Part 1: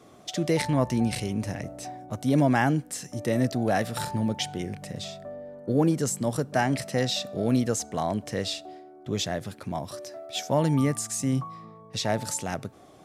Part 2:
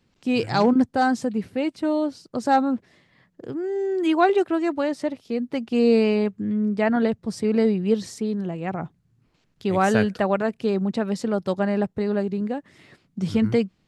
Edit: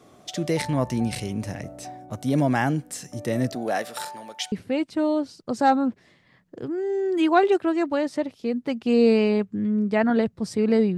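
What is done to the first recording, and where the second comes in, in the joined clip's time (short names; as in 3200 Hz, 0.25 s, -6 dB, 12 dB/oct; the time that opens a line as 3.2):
part 1
3.54–4.52 HPF 230 Hz -> 1100 Hz
4.52 switch to part 2 from 1.38 s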